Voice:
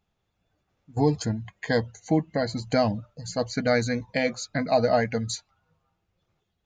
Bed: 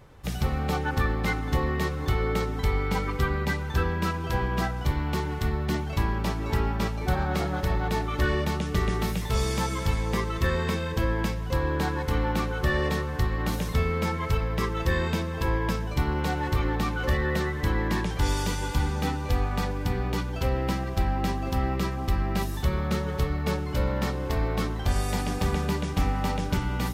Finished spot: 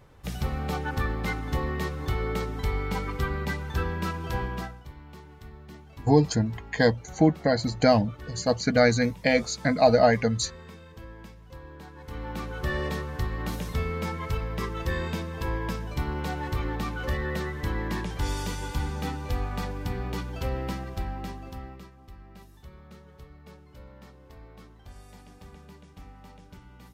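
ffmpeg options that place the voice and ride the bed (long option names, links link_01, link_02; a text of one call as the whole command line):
ffmpeg -i stem1.wav -i stem2.wav -filter_complex "[0:a]adelay=5100,volume=3dB[link_01];[1:a]volume=11.5dB,afade=type=out:start_time=4.4:duration=0.43:silence=0.16788,afade=type=in:start_time=11.94:duration=0.78:silence=0.188365,afade=type=out:start_time=20.56:duration=1.35:silence=0.125893[link_02];[link_01][link_02]amix=inputs=2:normalize=0" out.wav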